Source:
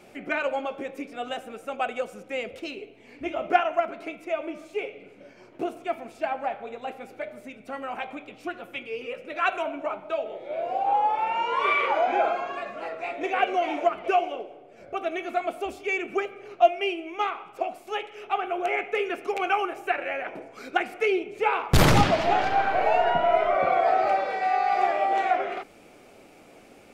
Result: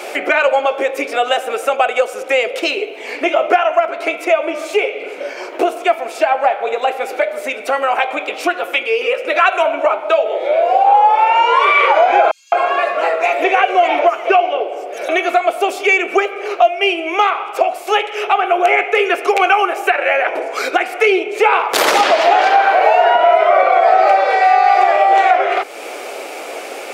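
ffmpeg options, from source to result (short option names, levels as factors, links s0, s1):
-filter_complex "[0:a]asettb=1/sr,asplit=3[s0][s1][s2];[s0]atrim=end=12.314[s3];[s1]atrim=start=12.31:end=15.09,asetpts=PTS-STARTPTS,afade=t=in:d=0.004:c=qsin,afade=t=out:st=2.776:d=0.004:c=qsin,acrossover=split=5400[s4][s5];[s4]adelay=210[s6];[s6][s5]amix=inputs=2:normalize=0,atrim=end_sample=122598[s7];[s2]atrim=start=15.086[s8];[s3][s7]acrossfade=d=0.004:c1=hsin:c2=qsin[s9];[s9][s8]acrossfade=d=0.004:c1=qsin:c2=hsin,highpass=f=410:w=0.5412,highpass=f=410:w=1.3066,acompressor=threshold=0.00631:ratio=2,alimiter=level_in=21.1:limit=0.891:release=50:level=0:latency=1,volume=0.891"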